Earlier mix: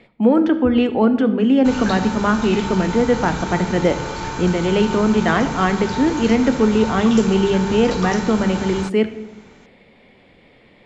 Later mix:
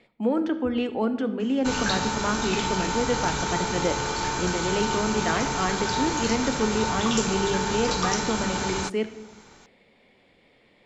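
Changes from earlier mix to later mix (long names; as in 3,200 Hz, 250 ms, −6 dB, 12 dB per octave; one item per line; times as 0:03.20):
speech −8.5 dB
master: add bass and treble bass −4 dB, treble +6 dB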